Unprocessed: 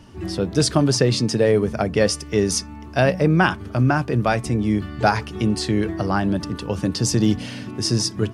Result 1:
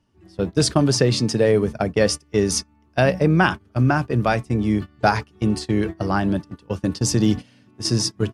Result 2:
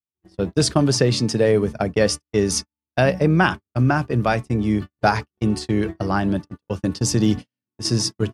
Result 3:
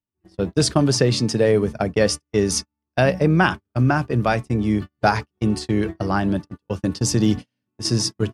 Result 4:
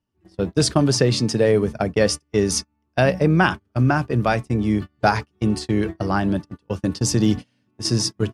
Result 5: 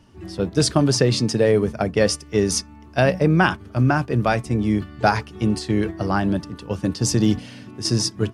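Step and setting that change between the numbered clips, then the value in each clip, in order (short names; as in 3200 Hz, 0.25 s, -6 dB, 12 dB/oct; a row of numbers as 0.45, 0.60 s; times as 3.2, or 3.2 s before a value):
gate, range: -21, -59, -47, -34, -7 dB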